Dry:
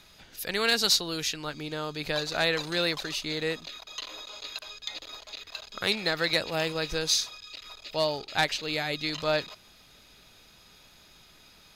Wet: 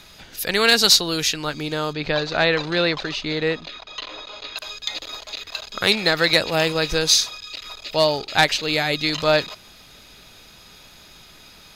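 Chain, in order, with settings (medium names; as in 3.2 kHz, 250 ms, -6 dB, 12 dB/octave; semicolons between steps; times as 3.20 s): 1.93–4.57 s: distance through air 160 m; trim +9 dB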